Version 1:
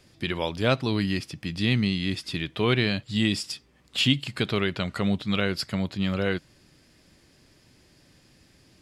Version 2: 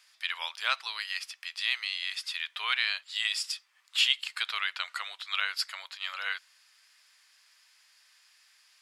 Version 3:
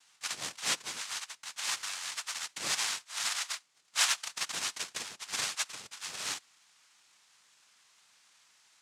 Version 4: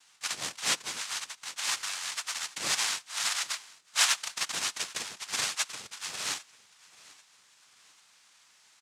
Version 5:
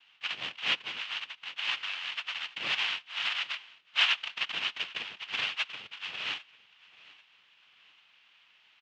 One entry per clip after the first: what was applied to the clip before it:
inverse Chebyshev high-pass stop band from 240 Hz, stop band 70 dB
noise vocoder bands 2; gain -3 dB
feedback echo 0.793 s, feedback 38%, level -22 dB; gain +3 dB
ladder low-pass 3200 Hz, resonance 65%; gain +7 dB

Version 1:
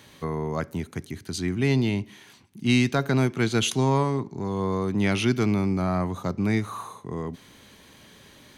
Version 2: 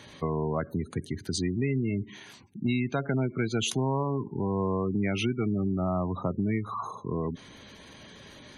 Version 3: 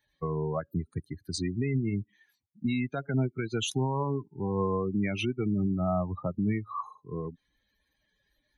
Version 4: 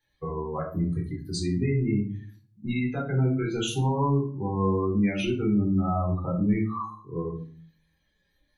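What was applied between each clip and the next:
spectral gate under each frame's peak -20 dB strong; bell 630 Hz +3 dB 0.3 oct; compressor 4:1, threshold -28 dBFS, peak gain reduction 10.5 dB; gain +2.5 dB
per-bin expansion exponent 2; limiter -25 dBFS, peak gain reduction 6 dB; upward expander 1.5:1, over -45 dBFS; gain +5.5 dB
shoebox room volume 360 m³, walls furnished, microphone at 3.9 m; gain -4 dB

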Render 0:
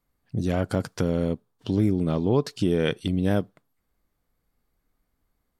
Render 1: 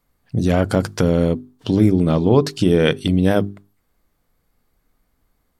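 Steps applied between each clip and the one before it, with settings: notches 50/100/150/200/250/300/350/400 Hz; gain +8.5 dB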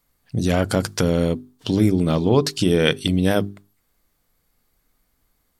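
high shelf 2300 Hz +8.5 dB; gain -3 dB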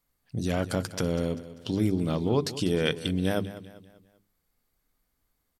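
feedback echo 0.196 s, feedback 43%, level -15 dB; gain -8.5 dB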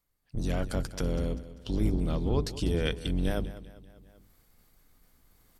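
octaver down 2 oct, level +4 dB; reverse; upward compressor, threshold -42 dBFS; reverse; gain -5 dB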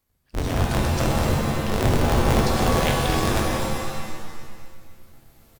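cycle switcher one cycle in 2, inverted; on a send: feedback echo 0.256 s, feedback 37%, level -9 dB; on the sum: shimmer reverb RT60 1.4 s, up +7 st, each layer -2 dB, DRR 2.5 dB; gain +4 dB

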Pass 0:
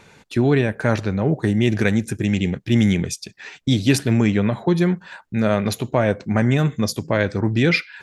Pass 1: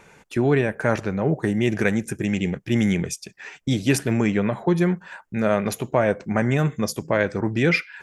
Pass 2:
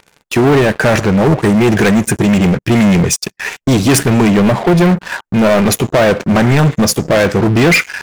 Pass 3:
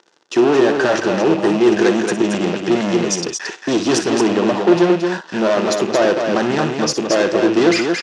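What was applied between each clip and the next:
fifteen-band EQ 100 Hz -8 dB, 250 Hz -4 dB, 4000 Hz -9 dB
sample leveller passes 5
rattling part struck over -19 dBFS, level -12 dBFS; speaker cabinet 310–6700 Hz, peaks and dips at 340 Hz +9 dB, 2300 Hz -10 dB, 5700 Hz +3 dB; on a send: loudspeakers at several distances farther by 20 m -11 dB, 77 m -5 dB; on the sum: gain -5 dB

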